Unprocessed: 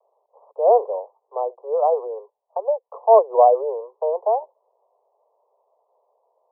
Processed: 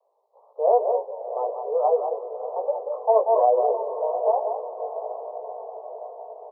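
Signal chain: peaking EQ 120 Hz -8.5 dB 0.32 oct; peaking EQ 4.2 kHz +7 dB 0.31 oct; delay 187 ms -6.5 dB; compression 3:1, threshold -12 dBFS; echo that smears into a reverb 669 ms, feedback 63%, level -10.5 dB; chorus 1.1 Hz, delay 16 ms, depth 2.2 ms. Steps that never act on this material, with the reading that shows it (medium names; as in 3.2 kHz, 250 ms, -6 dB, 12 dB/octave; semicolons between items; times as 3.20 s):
peaking EQ 120 Hz: input has nothing below 360 Hz; peaking EQ 4.2 kHz: input has nothing above 1.1 kHz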